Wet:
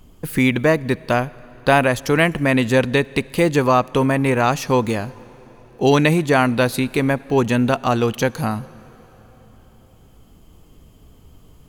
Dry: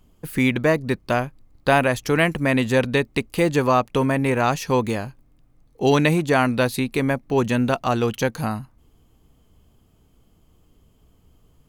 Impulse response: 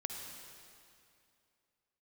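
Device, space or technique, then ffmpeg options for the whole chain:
ducked reverb: -filter_complex "[0:a]asplit=3[s0][s1][s2];[1:a]atrim=start_sample=2205[s3];[s1][s3]afir=irnorm=-1:irlink=0[s4];[s2]apad=whole_len=515348[s5];[s4][s5]sidechaincompress=threshold=0.0158:ratio=10:attack=16:release=1370,volume=1.5[s6];[s0][s6]amix=inputs=2:normalize=0,volume=1.26"

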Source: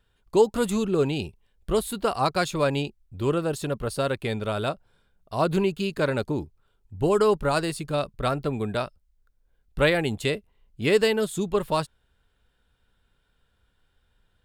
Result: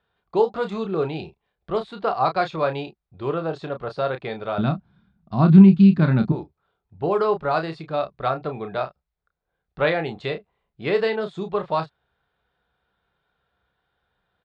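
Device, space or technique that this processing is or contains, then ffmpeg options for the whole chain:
guitar cabinet: -filter_complex "[0:a]asettb=1/sr,asplit=3[s0][s1][s2];[s0]atrim=end=4.584[s3];[s1]atrim=start=4.58:end=6.32,asetpts=PTS-STARTPTS,afade=t=in:d=0.004:c=qsin,afade=t=out:st=1.736:d=0.004:c=qsin,lowshelf=f=330:t=q:w=3:g=13[s4];[s2]atrim=start=6.316[s5];[s3][s4]acrossfade=d=0.004:c1=hsin:c2=qsin[s6];[s6][s5]acrossfade=d=0.004:c1=qsin:c2=hsin,highpass=95,equalizer=f=100:t=q:w=4:g=-9,equalizer=f=250:t=q:w=4:g=-9,equalizer=f=730:t=q:w=4:g=7,equalizer=f=1200:t=q:w=4:g=4,equalizer=f=2900:t=q:w=4:g=-6,lowpass=f=4000:w=0.5412,lowpass=f=4000:w=1.3066,asplit=2[s7][s8];[s8]adelay=31,volume=0.398[s9];[s7][s9]amix=inputs=2:normalize=0,volume=0.891"

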